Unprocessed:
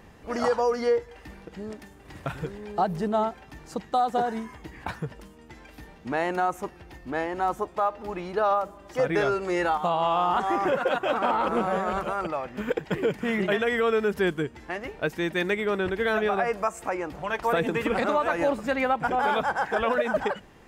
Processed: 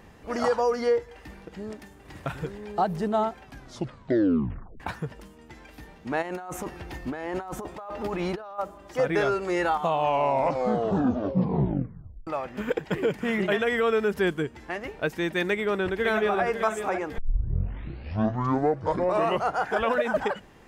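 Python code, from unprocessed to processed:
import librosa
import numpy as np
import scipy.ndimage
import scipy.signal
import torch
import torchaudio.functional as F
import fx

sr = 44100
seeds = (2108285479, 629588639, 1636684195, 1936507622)

y = fx.over_compress(x, sr, threshold_db=-35.0, ratio=-1.0, at=(6.21, 8.58), fade=0.02)
y = fx.echo_throw(y, sr, start_s=15.49, length_s=0.94, ms=550, feedback_pct=40, wet_db=-8.5)
y = fx.edit(y, sr, fx.tape_stop(start_s=3.43, length_s=1.37),
    fx.tape_stop(start_s=9.77, length_s=2.5),
    fx.tape_start(start_s=17.18, length_s=2.63), tone=tone)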